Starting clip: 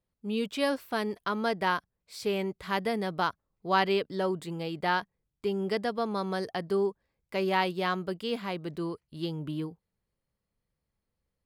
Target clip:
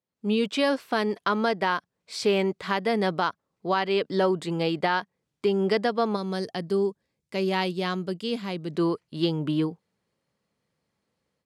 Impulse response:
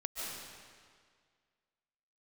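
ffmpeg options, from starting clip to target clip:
-filter_complex "[0:a]asplit=3[s0][s1][s2];[s0]afade=t=out:st=6.15:d=0.02[s3];[s1]equalizer=f=1100:w=0.32:g=-12,afade=t=in:st=6.15:d=0.02,afade=t=out:st=8.74:d=0.02[s4];[s2]afade=t=in:st=8.74:d=0.02[s5];[s3][s4][s5]amix=inputs=3:normalize=0,dynaudnorm=f=120:g=3:m=5.31,alimiter=limit=0.355:level=0:latency=1:release=367,highpass=160,lowpass=7700,volume=0.596"

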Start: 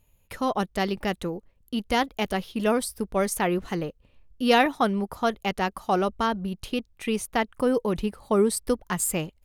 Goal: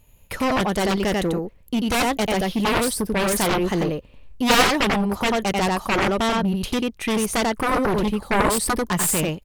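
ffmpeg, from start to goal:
-af "aecho=1:1:91:0.668,apsyclip=2.99,aeval=exprs='1.06*(cos(1*acos(clip(val(0)/1.06,-1,1)))-cos(1*PI/2))+0.422*(cos(3*acos(clip(val(0)/1.06,-1,1)))-cos(3*PI/2))+0.0944*(cos(6*acos(clip(val(0)/1.06,-1,1)))-cos(6*PI/2))+0.211*(cos(7*acos(clip(val(0)/1.06,-1,1)))-cos(7*PI/2))+0.0335*(cos(8*acos(clip(val(0)/1.06,-1,1)))-cos(8*PI/2))':c=same,volume=0.562"

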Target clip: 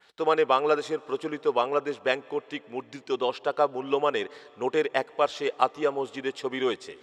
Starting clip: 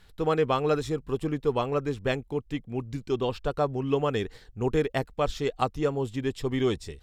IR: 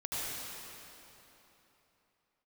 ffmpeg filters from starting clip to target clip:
-filter_complex "[0:a]highpass=490,lowpass=6300,asplit=2[s0][s1];[1:a]atrim=start_sample=2205,adelay=53[s2];[s1][s2]afir=irnorm=-1:irlink=0,volume=0.0398[s3];[s0][s3]amix=inputs=2:normalize=0,adynamicequalizer=threshold=0.00224:dfrequency=4800:dqfactor=0.96:tfrequency=4800:tqfactor=0.96:attack=5:release=100:ratio=0.375:range=2.5:mode=cutabove:tftype=bell,volume=1.78"

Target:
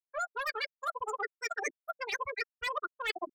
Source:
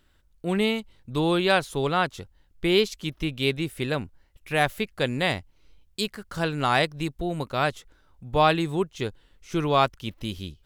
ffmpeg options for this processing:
-filter_complex "[0:a]lowshelf=f=150:g=-4.5,bandreject=f=60:t=h:w=6,bandreject=f=120:t=h:w=6,bandreject=f=180:t=h:w=6,bandreject=f=240:t=h:w=6,bandreject=f=300:t=h:w=6,bandreject=f=360:t=h:w=6,bandreject=f=420:t=h:w=6,asplit=2[s0][s1];[s1]adelay=116.6,volume=0.0501,highshelf=f=4000:g=-2.62[s2];[s0][s2]amix=inputs=2:normalize=0,asetrate=140238,aresample=44100,afftfilt=real='re*gte(hypot(re,im),0.126)':imag='im*gte(hypot(re,im),0.126)':win_size=1024:overlap=0.75,bandreject=f=4200:w=8.8,aecho=1:1:5:0.61,asoftclip=type=tanh:threshold=0.133,areverse,acompressor=threshold=0.0126:ratio=20,areverse,equalizer=f=9200:w=1.4:g=-9.5,volume=2.11"

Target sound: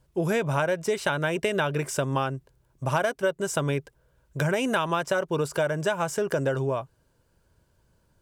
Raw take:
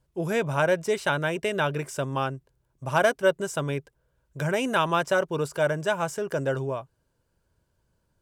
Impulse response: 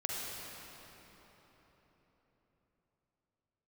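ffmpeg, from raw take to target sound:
-af "acompressor=threshold=0.0398:ratio=6,volume=2"

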